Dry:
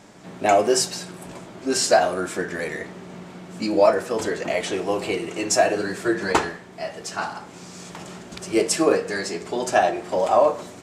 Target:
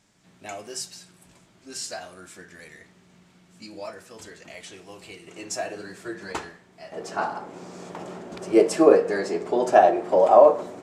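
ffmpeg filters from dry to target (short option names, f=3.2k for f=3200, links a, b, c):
-af "asetnsamples=n=441:p=0,asendcmd='5.27 equalizer g -3;6.92 equalizer g 14.5',equalizer=f=510:w=0.36:g=-11.5,volume=-10dB"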